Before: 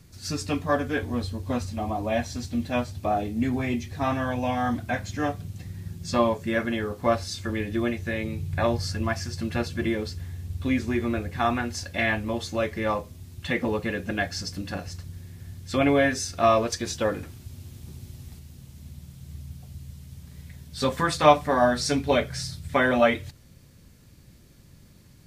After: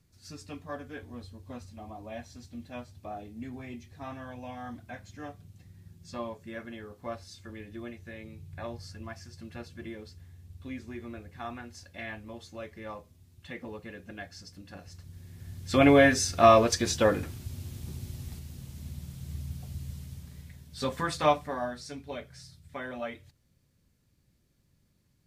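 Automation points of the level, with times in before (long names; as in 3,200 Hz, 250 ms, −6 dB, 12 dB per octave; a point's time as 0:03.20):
0:14.67 −15 dB
0:15.24 −6 dB
0:15.85 +2 dB
0:19.98 +2 dB
0:20.64 −6.5 dB
0:21.24 −6.5 dB
0:21.86 −17 dB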